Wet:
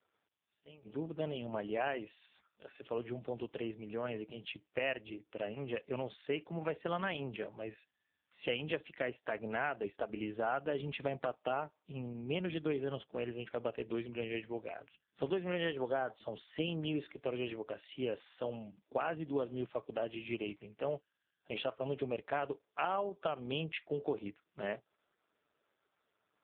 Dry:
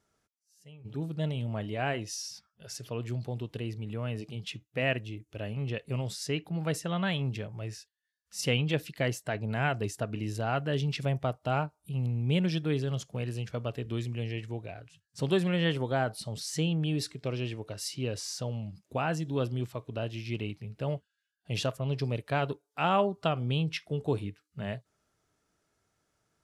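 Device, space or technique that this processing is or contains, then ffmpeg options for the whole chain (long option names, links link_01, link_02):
voicemail: -af "highpass=330,lowpass=3200,acompressor=threshold=-33dB:ratio=10,volume=3dB" -ar 8000 -c:a libopencore_amrnb -b:a 4750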